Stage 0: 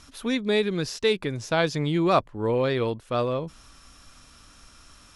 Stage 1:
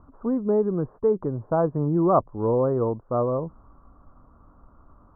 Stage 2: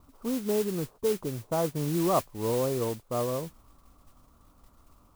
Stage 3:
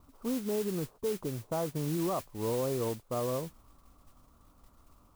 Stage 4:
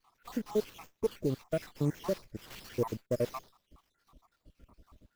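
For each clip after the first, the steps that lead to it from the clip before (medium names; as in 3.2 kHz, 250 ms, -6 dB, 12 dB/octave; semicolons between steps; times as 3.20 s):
steep low-pass 1.2 kHz 48 dB/octave; trim +2 dB
modulation noise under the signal 13 dB; trim -6 dB
peak limiter -21.5 dBFS, peak gain reduction 8 dB; trim -2 dB
random holes in the spectrogram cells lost 81%; sliding maximum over 5 samples; trim +5.5 dB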